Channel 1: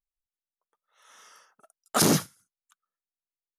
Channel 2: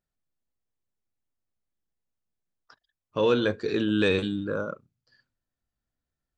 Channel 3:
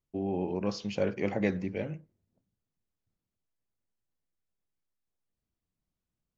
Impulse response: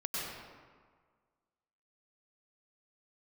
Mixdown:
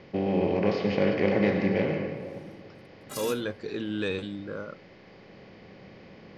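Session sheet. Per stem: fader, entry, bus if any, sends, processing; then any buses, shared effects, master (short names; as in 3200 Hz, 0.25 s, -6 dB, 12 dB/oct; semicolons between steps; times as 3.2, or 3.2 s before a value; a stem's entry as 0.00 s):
-7.5 dB, 1.15 s, no send, spectral contrast lowered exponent 0.64; metallic resonator 120 Hz, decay 0.27 s, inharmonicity 0.03
-7.0 dB, 0.00 s, no send, dry
-2.0 dB, 0.00 s, send -5 dB, per-bin compression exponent 0.4; LPF 4200 Hz 24 dB/oct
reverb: on, RT60 1.7 s, pre-delay 91 ms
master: dry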